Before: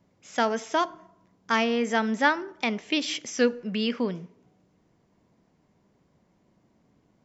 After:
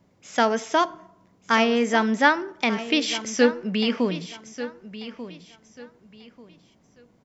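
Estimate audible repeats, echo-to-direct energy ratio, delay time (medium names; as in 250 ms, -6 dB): 2, -13.0 dB, 1190 ms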